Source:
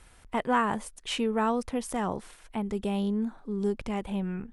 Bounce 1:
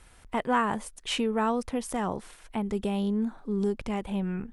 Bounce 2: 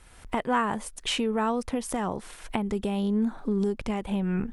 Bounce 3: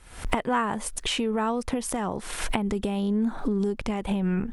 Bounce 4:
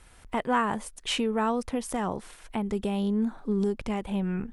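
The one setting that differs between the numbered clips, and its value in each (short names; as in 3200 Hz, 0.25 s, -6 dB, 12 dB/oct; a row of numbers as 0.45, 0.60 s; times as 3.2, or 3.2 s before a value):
recorder AGC, rising by: 5.1, 31, 87, 13 dB/s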